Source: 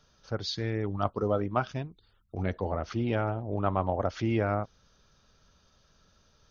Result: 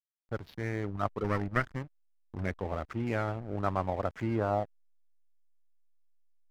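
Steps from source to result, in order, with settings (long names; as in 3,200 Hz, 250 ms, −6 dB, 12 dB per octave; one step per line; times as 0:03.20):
0:01.24–0:02.44: lower of the sound and its delayed copy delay 0.6 ms
low-pass filter sweep 2,100 Hz → 190 Hz, 0:04.21–0:05.09
slack as between gear wheels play −34 dBFS
level −3.5 dB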